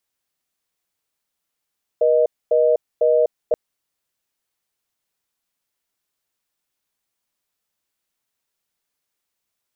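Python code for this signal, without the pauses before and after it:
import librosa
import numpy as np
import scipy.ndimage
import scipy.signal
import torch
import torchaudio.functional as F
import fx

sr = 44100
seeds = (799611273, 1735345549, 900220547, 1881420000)

y = fx.call_progress(sr, length_s=1.53, kind='reorder tone', level_db=-15.5)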